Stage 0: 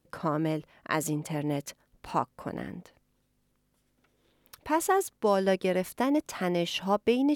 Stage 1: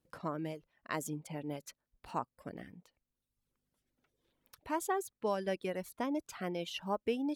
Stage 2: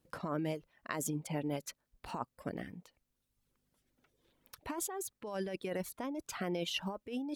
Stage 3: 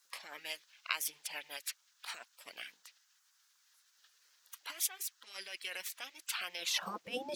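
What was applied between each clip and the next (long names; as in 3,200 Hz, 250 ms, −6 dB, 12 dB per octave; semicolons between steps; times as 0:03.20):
reverb reduction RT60 1 s; level −8.5 dB
compressor whose output falls as the input rises −39 dBFS, ratio −1; level +2 dB
noise in a band 720–6,300 Hz −78 dBFS; high-pass filter sweep 2,200 Hz → 140 Hz, 0:06.55–0:07.18; gate on every frequency bin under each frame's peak −10 dB weak; level +9.5 dB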